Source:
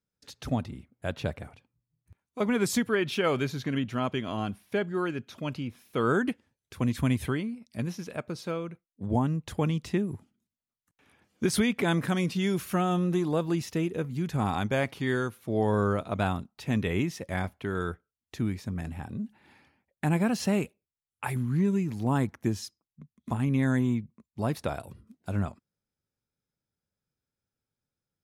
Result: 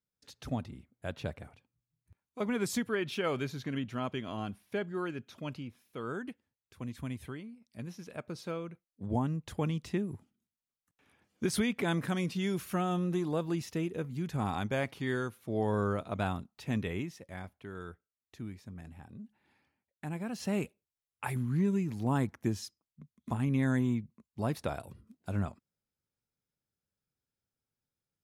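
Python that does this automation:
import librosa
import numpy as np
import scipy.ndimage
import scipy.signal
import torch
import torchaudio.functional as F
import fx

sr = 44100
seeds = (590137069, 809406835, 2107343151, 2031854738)

y = fx.gain(x, sr, db=fx.line((5.51, -6.0), (6.0, -13.0), (7.54, -13.0), (8.35, -5.0), (16.77, -5.0), (17.24, -12.5), (20.24, -12.5), (20.64, -3.5)))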